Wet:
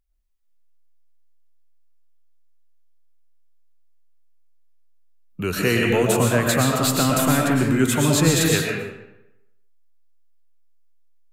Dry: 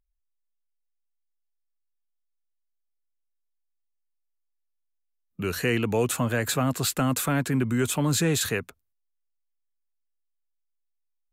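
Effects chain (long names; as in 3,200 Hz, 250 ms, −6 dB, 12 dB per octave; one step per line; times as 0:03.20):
comb and all-pass reverb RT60 0.89 s, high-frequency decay 0.75×, pre-delay 80 ms, DRR −1 dB
level +3.5 dB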